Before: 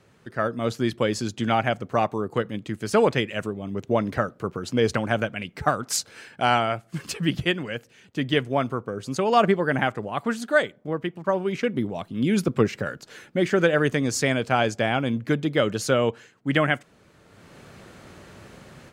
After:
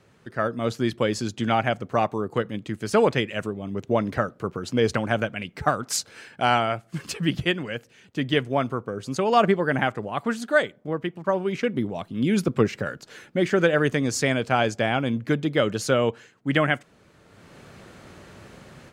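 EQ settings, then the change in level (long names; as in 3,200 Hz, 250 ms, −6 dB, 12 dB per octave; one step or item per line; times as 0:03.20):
high-shelf EQ 11,000 Hz −3 dB
0.0 dB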